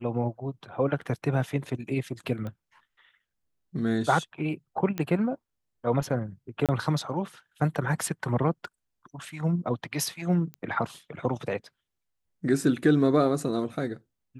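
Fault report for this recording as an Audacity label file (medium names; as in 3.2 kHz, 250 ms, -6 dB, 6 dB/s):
1.010000	1.010000	dropout 4.2 ms
2.470000	2.470000	pop -25 dBFS
4.980000	4.980000	pop -16 dBFS
6.660000	6.690000	dropout 27 ms
10.540000	10.540000	pop -25 dBFS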